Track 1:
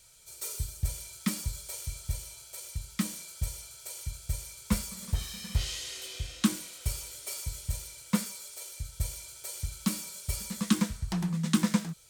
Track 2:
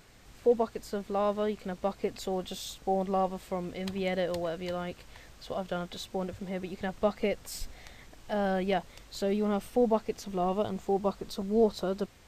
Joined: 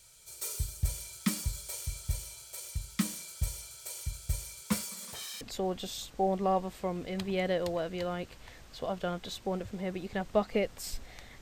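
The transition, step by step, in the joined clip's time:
track 1
0:04.61–0:05.41: high-pass filter 150 Hz → 680 Hz
0:05.41: continue with track 2 from 0:02.09

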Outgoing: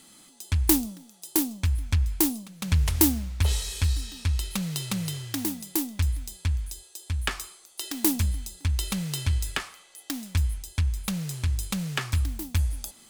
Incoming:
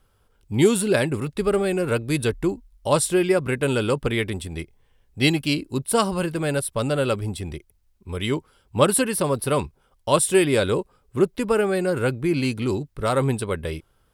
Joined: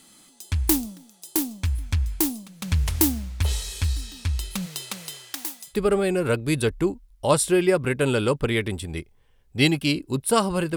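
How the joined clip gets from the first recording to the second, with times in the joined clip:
outgoing
0:04.65–0:05.77: high-pass filter 270 Hz → 920 Hz
0:05.72: continue with incoming from 0:01.34, crossfade 0.10 s

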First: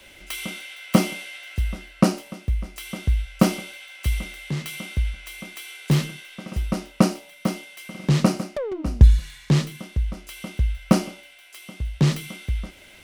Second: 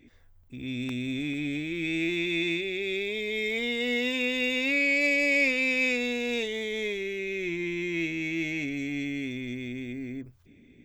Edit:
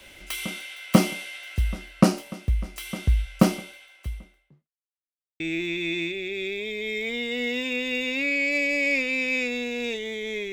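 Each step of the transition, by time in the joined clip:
first
0:03.17–0:04.70: fade out and dull
0:04.70–0:05.40: silence
0:05.40: continue with second from 0:01.89

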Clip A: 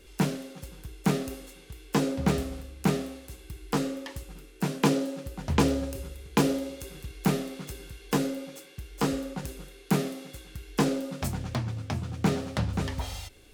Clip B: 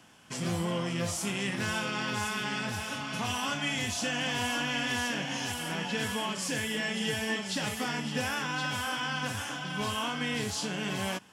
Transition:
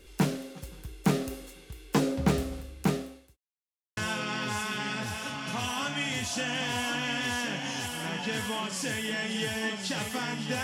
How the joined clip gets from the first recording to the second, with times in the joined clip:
clip A
0:02.57–0:03.37: fade out equal-power
0:03.37–0:03.97: silence
0:03.97: continue with clip B from 0:01.63

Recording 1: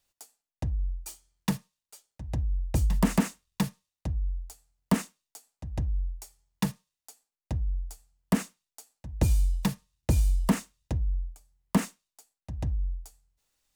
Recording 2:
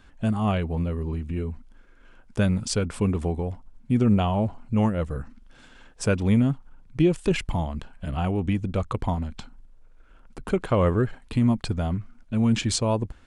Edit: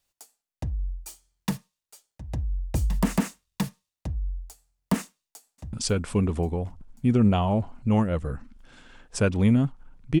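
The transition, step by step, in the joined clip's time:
recording 1
0:05.04–0:05.73: delay throw 540 ms, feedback 55%, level −8.5 dB
0:05.73: continue with recording 2 from 0:02.59

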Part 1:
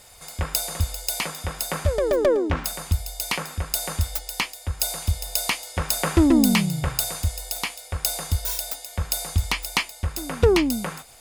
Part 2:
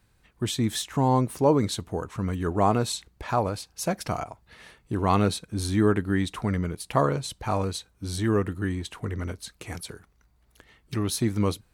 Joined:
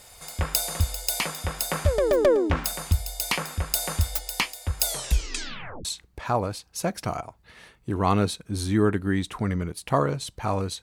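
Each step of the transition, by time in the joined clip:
part 1
0:04.85: tape stop 1.00 s
0:05.85: continue with part 2 from 0:02.88

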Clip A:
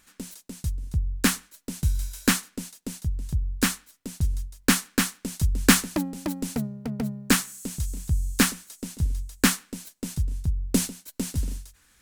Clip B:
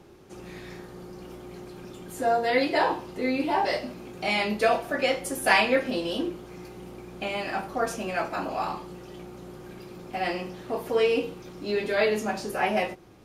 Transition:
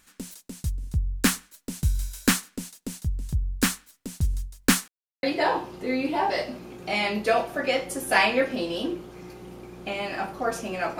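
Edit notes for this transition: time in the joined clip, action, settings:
clip A
0:04.88–0:05.23: silence
0:05.23: continue with clip B from 0:02.58

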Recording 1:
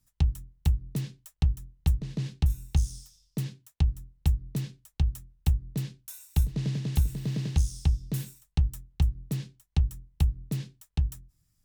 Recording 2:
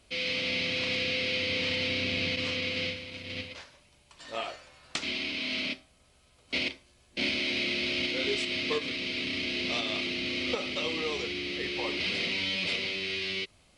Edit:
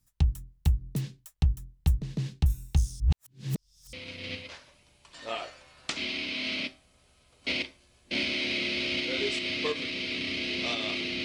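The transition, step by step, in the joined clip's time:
recording 1
0:03.00–0:03.93: reverse
0:03.93: continue with recording 2 from 0:02.99

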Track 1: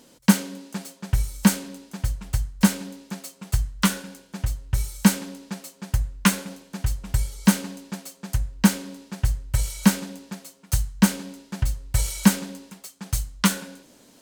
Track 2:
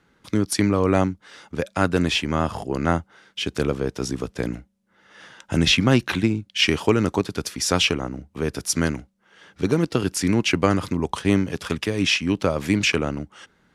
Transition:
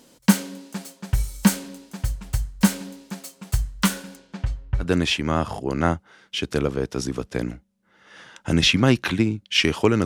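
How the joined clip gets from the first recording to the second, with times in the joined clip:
track 1
0:04.15–0:04.87: low-pass filter 6,700 Hz → 1,600 Hz
0:04.83: continue with track 2 from 0:01.87, crossfade 0.08 s

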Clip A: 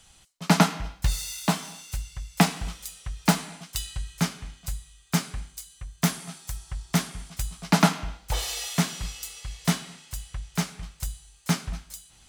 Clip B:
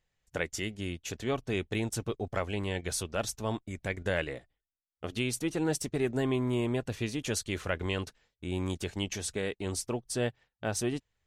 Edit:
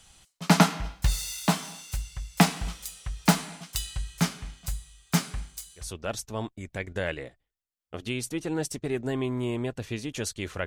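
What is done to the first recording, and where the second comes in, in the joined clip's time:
clip A
0:05.86: continue with clip B from 0:02.96, crossfade 0.22 s

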